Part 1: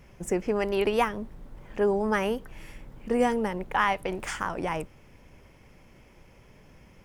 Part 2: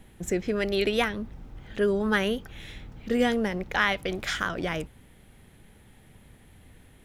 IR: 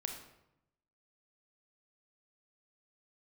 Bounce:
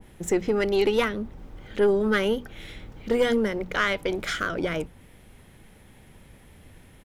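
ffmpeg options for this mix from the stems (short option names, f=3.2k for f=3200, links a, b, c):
-filter_complex "[0:a]volume=-4dB[a];[1:a]bandreject=f=60:t=h:w=6,bandreject=f=120:t=h:w=6,bandreject=f=180:t=h:w=6,bandreject=f=240:t=h:w=6,volume=-1,adelay=0.8,volume=3dB[b];[a][b]amix=inputs=2:normalize=0,aeval=exprs='(tanh(3.98*val(0)+0.3)-tanh(0.3))/3.98':c=same,adynamicequalizer=threshold=0.00631:dfrequency=1700:dqfactor=0.7:tfrequency=1700:tqfactor=0.7:attack=5:release=100:ratio=0.375:range=1.5:mode=cutabove:tftype=highshelf"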